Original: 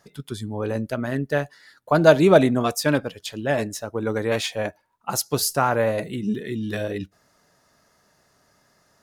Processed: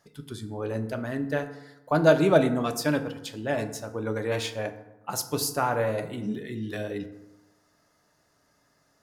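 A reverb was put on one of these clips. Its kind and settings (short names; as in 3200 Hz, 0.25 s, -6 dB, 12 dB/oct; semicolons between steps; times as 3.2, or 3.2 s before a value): FDN reverb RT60 0.99 s, low-frequency decay 1.1×, high-frequency decay 0.5×, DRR 7.5 dB; gain -6 dB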